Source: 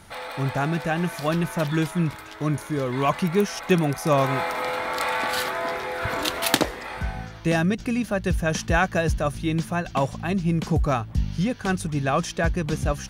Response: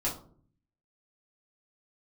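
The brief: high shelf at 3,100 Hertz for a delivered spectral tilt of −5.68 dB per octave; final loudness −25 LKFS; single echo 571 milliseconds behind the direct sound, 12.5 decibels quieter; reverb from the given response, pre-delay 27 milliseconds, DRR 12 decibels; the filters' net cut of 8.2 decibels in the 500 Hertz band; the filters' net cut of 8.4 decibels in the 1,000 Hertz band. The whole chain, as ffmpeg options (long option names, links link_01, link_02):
-filter_complex "[0:a]equalizer=frequency=500:width_type=o:gain=-8.5,equalizer=frequency=1000:width_type=o:gain=-7.5,highshelf=frequency=3100:gain=-6,aecho=1:1:571:0.237,asplit=2[link_01][link_02];[1:a]atrim=start_sample=2205,adelay=27[link_03];[link_02][link_03]afir=irnorm=-1:irlink=0,volume=-18dB[link_04];[link_01][link_04]amix=inputs=2:normalize=0,volume=2.5dB"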